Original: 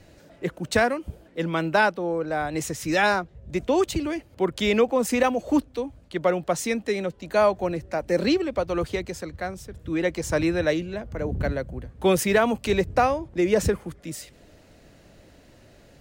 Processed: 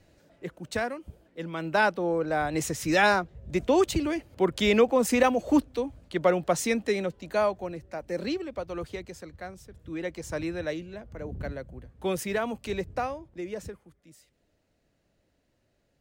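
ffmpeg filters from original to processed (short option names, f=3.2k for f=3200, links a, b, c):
-af "volume=-0.5dB,afade=t=in:st=1.57:d=0.42:silence=0.375837,afade=t=out:st=6.85:d=0.82:silence=0.375837,afade=t=out:st=12.86:d=0.95:silence=0.281838"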